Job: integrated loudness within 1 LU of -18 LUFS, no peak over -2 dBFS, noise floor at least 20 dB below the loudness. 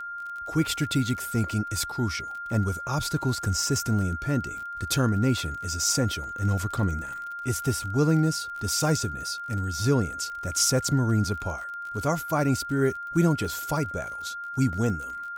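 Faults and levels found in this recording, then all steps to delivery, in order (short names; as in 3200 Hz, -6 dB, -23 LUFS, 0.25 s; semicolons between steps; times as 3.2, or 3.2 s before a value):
ticks 31/s; steady tone 1400 Hz; tone level -33 dBFS; loudness -26.5 LUFS; peak -11.0 dBFS; loudness target -18.0 LUFS
-> de-click; notch 1400 Hz, Q 30; gain +8.5 dB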